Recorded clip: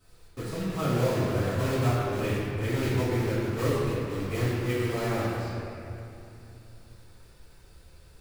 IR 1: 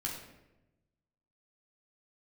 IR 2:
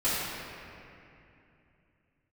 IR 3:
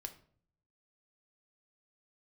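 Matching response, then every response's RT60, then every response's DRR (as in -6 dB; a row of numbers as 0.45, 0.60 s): 2; 1.0, 2.7, 0.55 s; -2.5, -13.0, 6.5 dB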